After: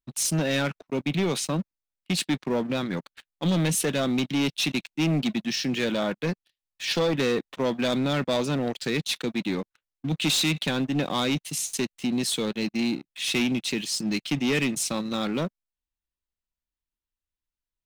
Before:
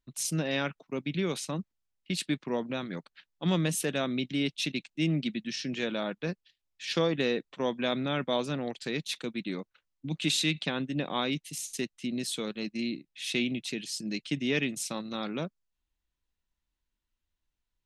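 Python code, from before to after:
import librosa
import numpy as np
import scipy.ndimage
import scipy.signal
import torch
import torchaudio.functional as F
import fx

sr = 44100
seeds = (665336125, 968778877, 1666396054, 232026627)

y = fx.leveller(x, sr, passes=3)
y = F.gain(torch.from_numpy(y), -3.0).numpy()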